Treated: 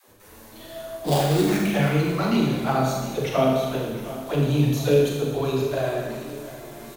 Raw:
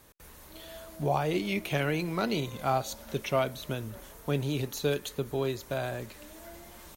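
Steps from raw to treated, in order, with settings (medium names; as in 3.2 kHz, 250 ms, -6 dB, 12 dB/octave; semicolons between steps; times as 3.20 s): peaking EQ 300 Hz +6 dB 2.8 oct; phase dispersion lows, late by 82 ms, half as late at 310 Hz; touch-sensitive flanger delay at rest 10.6 ms, full sweep at -18 dBFS; 1.04–1.59 s: sample-rate reducer 4.1 kHz, jitter 20%; on a send: feedback delay 708 ms, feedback 45%, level -15.5 dB; on the sum: Schroeder reverb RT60 1.2 s, combs from 27 ms, DRR -1.5 dB; trim +3.5 dB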